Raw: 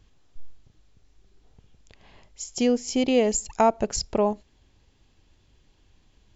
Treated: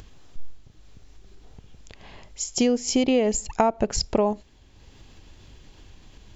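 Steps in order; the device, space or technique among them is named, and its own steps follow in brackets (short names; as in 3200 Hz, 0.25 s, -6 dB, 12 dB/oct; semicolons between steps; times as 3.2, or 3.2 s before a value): 3.04–4.01 tone controls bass +1 dB, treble -6 dB; upward and downward compression (upward compressor, threshold -45 dBFS; compressor 6:1, threshold -23 dBFS, peak gain reduction 8.5 dB); gain +6 dB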